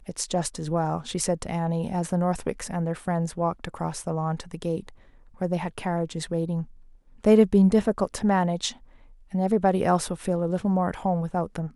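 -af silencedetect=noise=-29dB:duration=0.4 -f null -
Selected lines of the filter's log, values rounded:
silence_start: 4.89
silence_end: 5.41 | silence_duration: 0.53
silence_start: 6.62
silence_end: 7.24 | silence_duration: 0.62
silence_start: 8.70
silence_end: 9.34 | silence_duration: 0.64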